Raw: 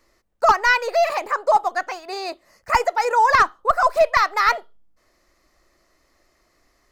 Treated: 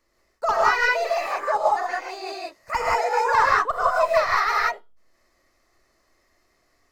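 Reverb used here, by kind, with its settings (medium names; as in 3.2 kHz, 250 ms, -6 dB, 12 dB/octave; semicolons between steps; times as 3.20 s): gated-style reverb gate 210 ms rising, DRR -5 dB; trim -8.5 dB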